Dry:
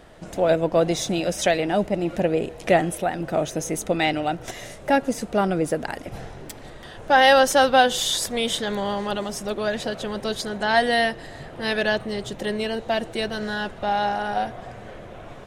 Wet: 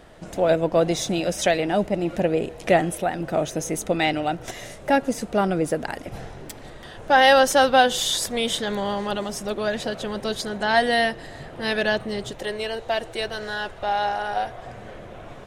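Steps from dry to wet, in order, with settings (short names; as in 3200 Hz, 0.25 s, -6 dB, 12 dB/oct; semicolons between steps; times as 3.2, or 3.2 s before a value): 12.31–14.64 bell 210 Hz -11 dB 0.91 oct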